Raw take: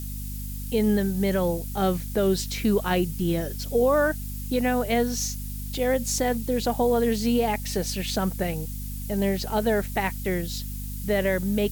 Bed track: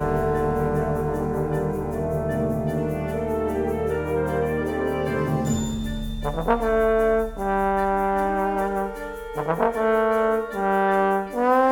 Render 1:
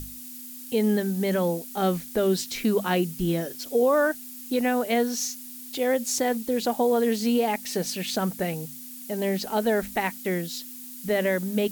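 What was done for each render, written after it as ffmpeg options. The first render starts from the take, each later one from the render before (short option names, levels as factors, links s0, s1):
-af "bandreject=f=50:t=h:w=6,bandreject=f=100:t=h:w=6,bandreject=f=150:t=h:w=6,bandreject=f=200:t=h:w=6"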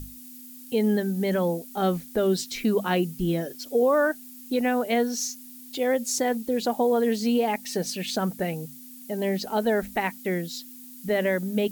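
-af "afftdn=nr=6:nf=-41"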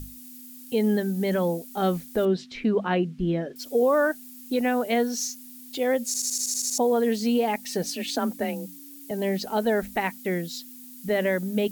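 -filter_complex "[0:a]asettb=1/sr,asplit=3[s0][s1][s2];[s0]atrim=end=2.254[s3];[s1]atrim=start=2.25:end=3.56,asetpts=PTS-STARTPTS,afade=t=in:d=0.004:c=qsin,afade=t=out:st=1.306:d=0.004:c=qsin,lowpass=2800[s4];[s2]atrim=start=3.556[s5];[s3][s4]acrossfade=d=0.004:c1=hsin:c2=qsin[s6];[s6][s5]acrossfade=d=0.004:c1=qsin:c2=hsin,asettb=1/sr,asplit=3[s7][s8][s9];[s7]atrim=end=7.834[s10];[s8]atrim=start=7.83:end=9.11,asetpts=PTS-STARTPTS,afade=t=in:d=0.004:c=qsin,afade=t=out:st=1.276:d=0.004:c=qsin,afreqshift=32[s11];[s9]atrim=start=9.106[s12];[s10][s11]acrossfade=d=0.004:c1=hsin:c2=qsin[s13];[s13][s12]acrossfade=d=0.004:c1=qsin:c2=hsin,asplit=10[s14][s15][s16][s17][s18][s19][s20][s21][s22][s23];[s14]atrim=end=6.142[s24];[s15]atrim=start=6.058:end=6.142[s25];[s16]atrim=start=6.058:end=6.142[s26];[s17]atrim=start=6.058:end=6.142[s27];[s18]atrim=start=6.058:end=6.142[s28];[s19]atrim=start=6.058:end=6.142[s29];[s20]atrim=start=6.058:end=6.142[s30];[s21]atrim=start=6.058:end=6.142[s31];[s22]atrim=start=6.058:end=6.142[s32];[s23]atrim=start=6.778[s33];[s24][s25]acrossfade=d=0.004:c1=hsin:c2=hsin[s34];[s34][s26]acrossfade=d=0.004:c1=hsin:c2=hsin[s35];[s35][s27]acrossfade=d=0.004:c1=hsin:c2=hsin[s36];[s36][s28]acrossfade=d=0.004:c1=hsin:c2=hsin[s37];[s37][s29]acrossfade=d=0.004:c1=hsin:c2=hsin[s38];[s38][s30]acrossfade=d=0.004:c1=hsin:c2=hsin[s39];[s39][s31]acrossfade=d=0.004:c1=hsin:c2=hsin[s40];[s40][s32]acrossfade=d=0.004:c1=hsin:c2=hsin[s41];[s41][s33]acrossfade=d=0.004:c1=hsin:c2=hsin"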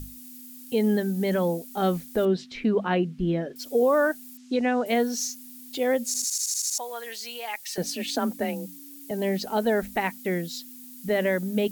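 -filter_complex "[0:a]asettb=1/sr,asplit=3[s0][s1][s2];[s0]atrim=end=4.374[s3];[s1]atrim=start=4.37:end=4.86,asetpts=PTS-STARTPTS,afade=t=in:d=0.004:c=qsin,afade=t=out:st=0.486:d=0.004:c=qsin,lowpass=f=6800:w=0.5412,lowpass=f=6800:w=1.3066[s4];[s2]atrim=start=4.856[s5];[s3][s4]acrossfade=d=0.004:c1=hsin:c2=qsin[s6];[s6][s5]acrossfade=d=0.004:c1=qsin:c2=hsin,asettb=1/sr,asplit=3[s7][s8][s9];[s7]atrim=end=6.244[s10];[s8]atrim=start=6.24:end=7.78,asetpts=PTS-STARTPTS,afade=t=in:d=0.004:c=qsin,afade=t=out:st=1.536:d=0.004:c=qsin,highpass=1200[s11];[s9]atrim=start=7.776[s12];[s10][s11]acrossfade=d=0.004:c1=hsin:c2=qsin[s13];[s13][s12]acrossfade=d=0.004:c1=qsin:c2=hsin"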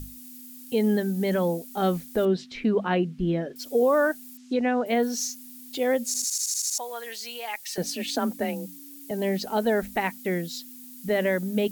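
-filter_complex "[0:a]asettb=1/sr,asplit=3[s0][s1][s2];[s0]atrim=end=4.534[s3];[s1]atrim=start=4.53:end=5.03,asetpts=PTS-STARTPTS,afade=t=in:d=0.004:c=qsin,afade=t=out:st=0.496:d=0.004:c=qsin,equalizer=f=9200:t=o:w=2.1:g=-7[s4];[s2]atrim=start=5.026[s5];[s3][s4]acrossfade=d=0.004:c1=hsin:c2=qsin[s6];[s6][s5]acrossfade=d=0.004:c1=qsin:c2=hsin"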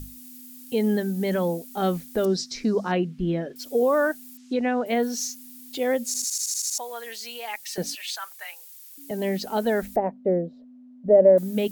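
-filter_complex "[0:a]asettb=1/sr,asplit=3[s0][s1][s2];[s0]atrim=end=2.244[s3];[s1]atrim=start=2.24:end=2.92,asetpts=PTS-STARTPTS,afade=t=in:d=0.004:c=qsin,afade=t=out:st=0.676:d=0.004:c=qsin,highshelf=f=4000:t=q:w=3:g=10[s4];[s2]atrim=start=2.916[s5];[s3][s4]acrossfade=d=0.004:c1=hsin:c2=qsin[s6];[s6][s5]acrossfade=d=0.004:c1=qsin:c2=hsin,asettb=1/sr,asplit=3[s7][s8][s9];[s7]atrim=end=7.954[s10];[s8]atrim=start=7.95:end=8.98,asetpts=PTS-STARTPTS,afade=t=in:d=0.004:c=qsin,afade=t=out:st=1.026:d=0.004:c=qsin,highpass=f=1100:w=0.5412,highpass=f=1100:w=1.3066[s11];[s9]atrim=start=8.976[s12];[s10][s11]acrossfade=d=0.004:c1=hsin:c2=qsin[s13];[s13][s12]acrossfade=d=0.004:c1=qsin:c2=hsin,asettb=1/sr,asplit=3[s14][s15][s16];[s14]atrim=end=9.964[s17];[s15]atrim=start=9.96:end=11.38,asetpts=PTS-STARTPTS,afade=t=in:d=0.004:c=qsin,afade=t=out:st=1.416:d=0.004:c=qsin,lowpass=f=590:t=q:w=4[s18];[s16]atrim=start=11.376[s19];[s17][s18]acrossfade=d=0.004:c1=hsin:c2=qsin[s20];[s20][s19]acrossfade=d=0.004:c1=qsin:c2=hsin"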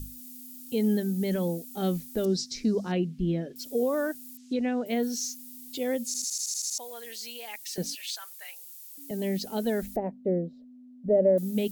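-filter_complex "[0:a]acrossover=split=6900[s0][s1];[s1]acompressor=threshold=0.0141:ratio=4:attack=1:release=60[s2];[s0][s2]amix=inputs=2:normalize=0,equalizer=f=1100:w=0.56:g=-11.5"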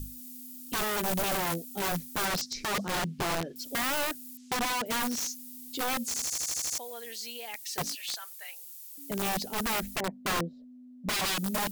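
-af "aeval=exprs='(mod(17.8*val(0)+1,2)-1)/17.8':c=same"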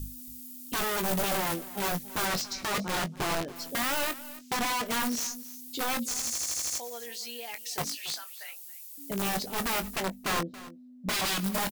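-filter_complex "[0:a]asplit=2[s0][s1];[s1]adelay=21,volume=0.335[s2];[s0][s2]amix=inputs=2:normalize=0,aecho=1:1:278:0.133"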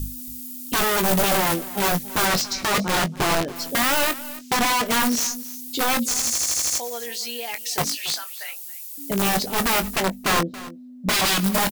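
-af "volume=2.82"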